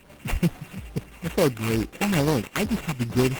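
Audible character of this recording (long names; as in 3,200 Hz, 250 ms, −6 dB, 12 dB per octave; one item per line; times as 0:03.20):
a buzz of ramps at a fixed pitch in blocks of 16 samples
phaser sweep stages 8, 2.3 Hz, lowest notch 470–4,100 Hz
aliases and images of a low sample rate 5,100 Hz, jitter 20%
Opus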